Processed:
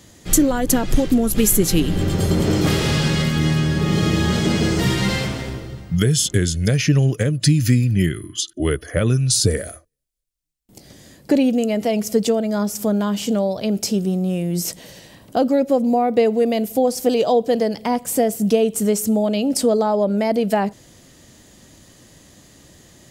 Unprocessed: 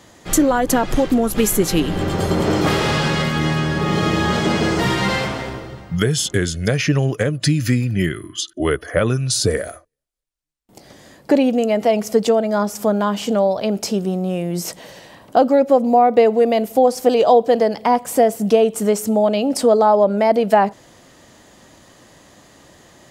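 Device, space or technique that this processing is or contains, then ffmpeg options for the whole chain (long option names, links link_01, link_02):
smiley-face EQ: -af "lowshelf=frequency=200:gain=6,equalizer=frequency=950:width_type=o:width=1.8:gain=-7.5,highshelf=frequency=5800:gain=6,volume=-1dB"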